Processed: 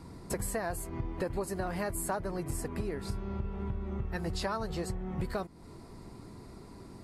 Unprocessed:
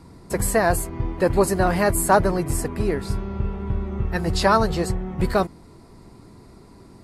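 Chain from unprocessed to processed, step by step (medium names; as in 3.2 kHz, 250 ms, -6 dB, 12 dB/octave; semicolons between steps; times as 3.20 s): compression 6:1, threshold -30 dBFS, peak gain reduction 17.5 dB; trim -2 dB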